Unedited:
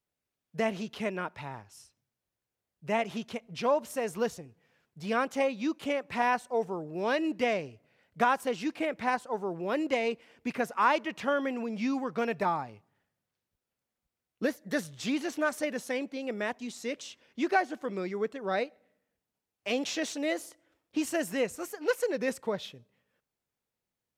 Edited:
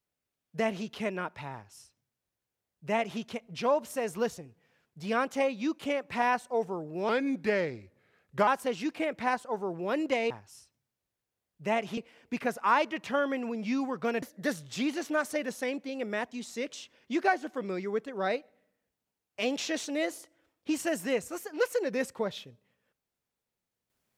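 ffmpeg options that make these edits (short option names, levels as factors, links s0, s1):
-filter_complex "[0:a]asplit=6[s0][s1][s2][s3][s4][s5];[s0]atrim=end=7.094[s6];[s1]atrim=start=7.09:end=8.28,asetpts=PTS-STARTPTS,asetrate=37926,aresample=44100,atrim=end_sample=61022,asetpts=PTS-STARTPTS[s7];[s2]atrim=start=8.276:end=10.112[s8];[s3]atrim=start=1.528:end=3.202[s9];[s4]atrim=start=10.108:end=12.362[s10];[s5]atrim=start=14.498[s11];[s6][s7]acrossfade=d=0.004:c1=hsin:c2=hsin[s12];[s12][s8]acrossfade=d=0.004:c1=hsin:c2=hsin[s13];[s13][s9]acrossfade=d=0.004:c1=hsin:c2=hsin[s14];[s14][s10]acrossfade=d=0.004:c1=hsin:c2=hsin[s15];[s15][s11]acrossfade=d=0.004:c1=hsin:c2=hsin"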